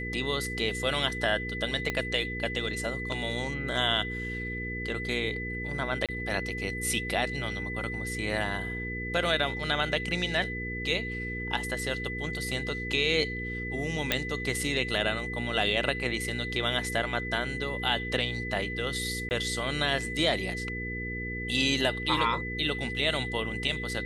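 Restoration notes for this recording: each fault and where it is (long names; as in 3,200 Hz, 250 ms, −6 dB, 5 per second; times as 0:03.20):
mains hum 60 Hz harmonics 8 −37 dBFS
whistle 2,000 Hz −35 dBFS
0:01.90: click −15 dBFS
0:06.06–0:06.09: drop-out 27 ms
0:14.12: click −8 dBFS
0:19.29–0:19.31: drop-out 19 ms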